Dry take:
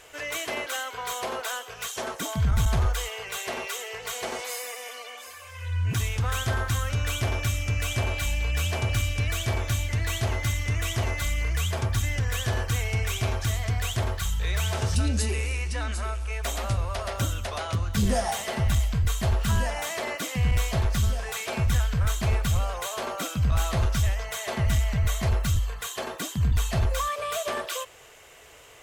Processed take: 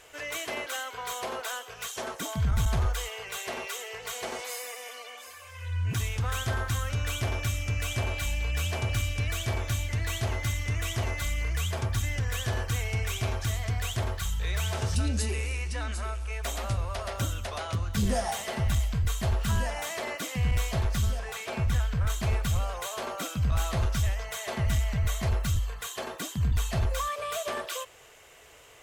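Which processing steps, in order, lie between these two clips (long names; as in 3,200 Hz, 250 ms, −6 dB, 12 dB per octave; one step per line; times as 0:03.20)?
0:21.19–0:22.10: high-shelf EQ 4,200 Hz −5.5 dB
level −3 dB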